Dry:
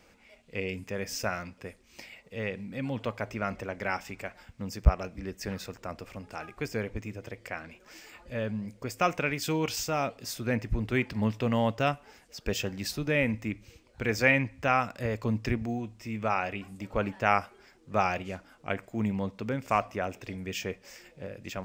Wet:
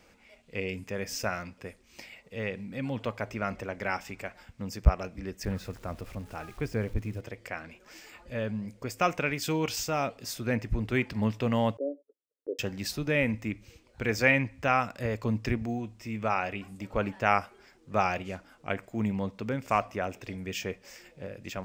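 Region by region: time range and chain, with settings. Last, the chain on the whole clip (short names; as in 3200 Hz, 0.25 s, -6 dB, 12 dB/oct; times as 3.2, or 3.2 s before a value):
5.43–7.21 switching spikes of -36 dBFS + LPF 2000 Hz 6 dB/oct + low shelf 110 Hz +11.5 dB
11.77–12.59 Chebyshev band-pass 280–570 Hz, order 4 + gate -58 dBFS, range -37 dB
whole clip: dry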